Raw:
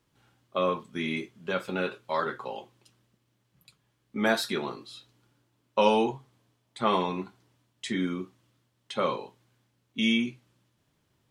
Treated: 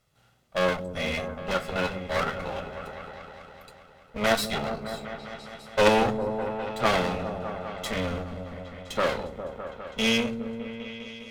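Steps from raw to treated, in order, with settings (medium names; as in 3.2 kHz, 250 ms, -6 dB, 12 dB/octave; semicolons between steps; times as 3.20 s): comb filter that takes the minimum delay 1.5 ms; delay with an opening low-pass 203 ms, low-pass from 400 Hz, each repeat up 1 oct, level -6 dB; Chebyshev shaper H 6 -18 dB, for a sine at -8.5 dBFS; trim +3.5 dB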